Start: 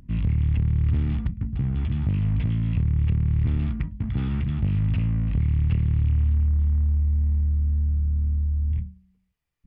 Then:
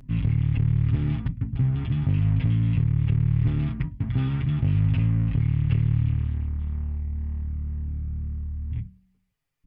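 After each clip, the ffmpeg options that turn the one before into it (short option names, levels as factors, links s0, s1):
-af "aecho=1:1:7.4:0.68"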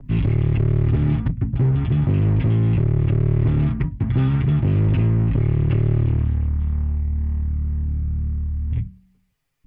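-filter_complex "[0:a]acrossover=split=250|580|1300[s0][s1][s2][s3];[s0]volume=12.6,asoftclip=hard,volume=0.0794[s4];[s4][s1][s2][s3]amix=inputs=4:normalize=0,adynamicequalizer=threshold=0.00178:dfrequency=2200:dqfactor=0.7:tfrequency=2200:tqfactor=0.7:attack=5:release=100:ratio=0.375:range=3.5:mode=cutabove:tftype=highshelf,volume=2.24"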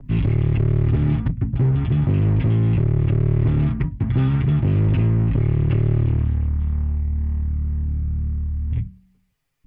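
-af anull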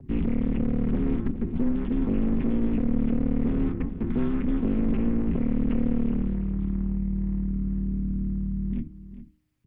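-filter_complex "[0:a]aeval=exprs='val(0)*sin(2*PI*120*n/s)':c=same,asplit=2[s0][s1];[s1]adelay=408.2,volume=0.224,highshelf=f=4000:g=-9.18[s2];[s0][s2]amix=inputs=2:normalize=0,acrossover=split=2500[s3][s4];[s4]acompressor=threshold=0.00141:ratio=4:attack=1:release=60[s5];[s3][s5]amix=inputs=2:normalize=0,volume=0.708"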